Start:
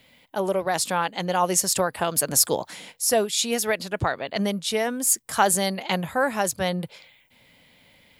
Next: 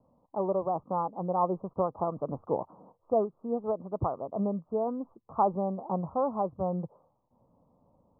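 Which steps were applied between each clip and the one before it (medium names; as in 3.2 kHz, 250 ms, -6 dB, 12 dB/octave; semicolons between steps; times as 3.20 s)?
steep low-pass 1.2 kHz 96 dB/octave; trim -4.5 dB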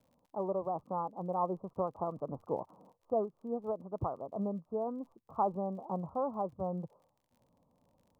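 crackle 42 per s -52 dBFS; trim -5.5 dB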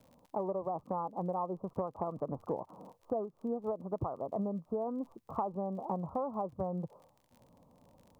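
compression 6:1, threshold -41 dBFS, peak gain reduction 14.5 dB; trim +8.5 dB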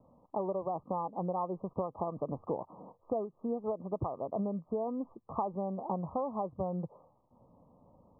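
brick-wall FIR low-pass 1.3 kHz; trim +1 dB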